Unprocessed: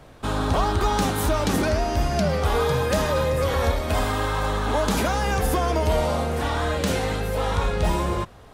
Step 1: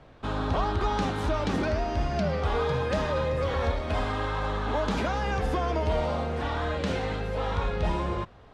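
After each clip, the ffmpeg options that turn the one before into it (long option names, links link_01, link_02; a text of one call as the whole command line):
ffmpeg -i in.wav -af "lowpass=4100,volume=-5dB" out.wav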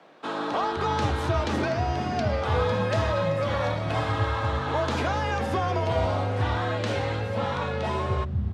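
ffmpeg -i in.wav -filter_complex "[0:a]bandreject=frequency=48.96:width_type=h:width=4,bandreject=frequency=97.92:width_type=h:width=4,bandreject=frequency=146.88:width_type=h:width=4,bandreject=frequency=195.84:width_type=h:width=4,bandreject=frequency=244.8:width_type=h:width=4,bandreject=frequency=293.76:width_type=h:width=4,bandreject=frequency=342.72:width_type=h:width=4,bandreject=frequency=391.68:width_type=h:width=4,bandreject=frequency=440.64:width_type=h:width=4,bandreject=frequency=489.6:width_type=h:width=4,bandreject=frequency=538.56:width_type=h:width=4,bandreject=frequency=587.52:width_type=h:width=4,bandreject=frequency=636.48:width_type=h:width=4,afreqshift=30,acrossover=split=220[link_01][link_02];[link_01]adelay=520[link_03];[link_03][link_02]amix=inputs=2:normalize=0,volume=2.5dB" out.wav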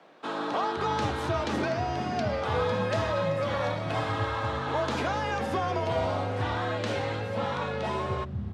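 ffmpeg -i in.wav -af "highpass=110,volume=-2dB" out.wav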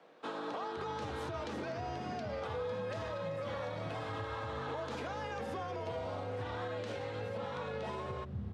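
ffmpeg -i in.wav -af "equalizer=frequency=480:width=7.7:gain=8,alimiter=level_in=0.5dB:limit=-24dB:level=0:latency=1:release=110,volume=-0.5dB,volume=-6.5dB" out.wav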